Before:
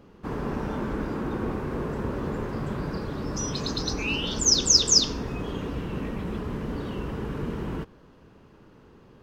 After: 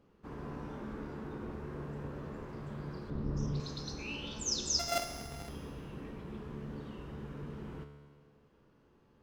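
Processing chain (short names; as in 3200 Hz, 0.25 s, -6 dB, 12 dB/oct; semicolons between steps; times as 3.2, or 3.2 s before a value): 4.79–5.49 sample sorter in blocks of 64 samples; resonator 72 Hz, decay 1.6 s, harmonics all, mix 80%; 3.1–3.6 tilt -3 dB/oct; Doppler distortion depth 0.18 ms; gain -2 dB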